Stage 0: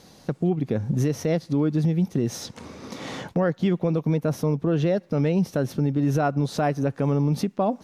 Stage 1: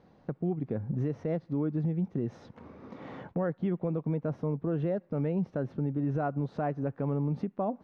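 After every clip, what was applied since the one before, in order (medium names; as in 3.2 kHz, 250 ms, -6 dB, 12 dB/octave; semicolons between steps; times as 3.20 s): low-pass 1.6 kHz 12 dB/octave; trim -8 dB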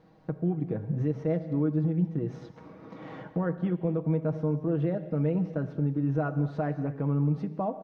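comb 6.3 ms, depth 57%; gated-style reverb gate 280 ms flat, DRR 10.5 dB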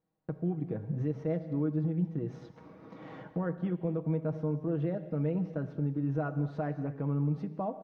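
gate with hold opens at -44 dBFS; trim -4 dB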